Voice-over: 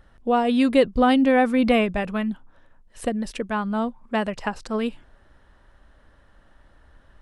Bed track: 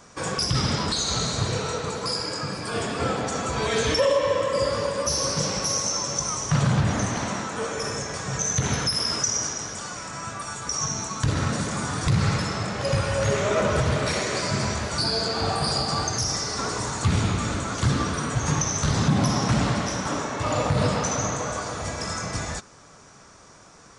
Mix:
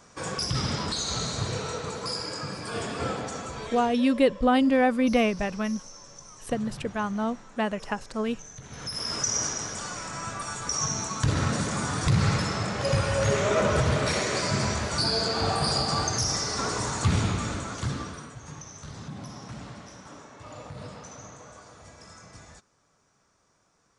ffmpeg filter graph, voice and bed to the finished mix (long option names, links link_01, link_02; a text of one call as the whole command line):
ffmpeg -i stem1.wav -i stem2.wav -filter_complex "[0:a]adelay=3450,volume=-3.5dB[link_01];[1:a]volume=15dB,afade=type=out:start_time=3.07:duration=0.85:silence=0.158489,afade=type=in:start_time=8.7:duration=0.71:silence=0.105925,afade=type=out:start_time=17.01:duration=1.35:silence=0.133352[link_02];[link_01][link_02]amix=inputs=2:normalize=0" out.wav